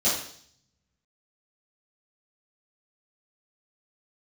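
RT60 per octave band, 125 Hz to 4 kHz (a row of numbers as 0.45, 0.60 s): 1.4, 0.70, 0.60, 0.55, 0.60, 0.70 s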